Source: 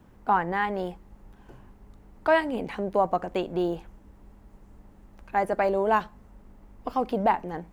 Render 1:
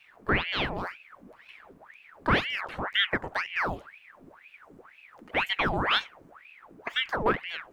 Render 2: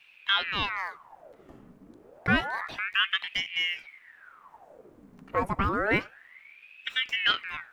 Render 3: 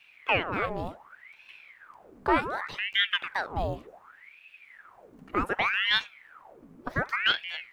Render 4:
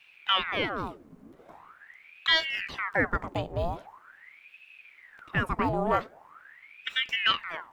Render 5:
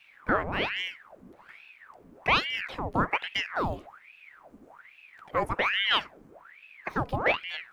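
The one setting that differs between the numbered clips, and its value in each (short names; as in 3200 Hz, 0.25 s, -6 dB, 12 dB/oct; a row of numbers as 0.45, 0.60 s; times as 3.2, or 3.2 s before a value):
ring modulator with a swept carrier, at: 2, 0.29, 0.67, 0.43, 1.2 Hz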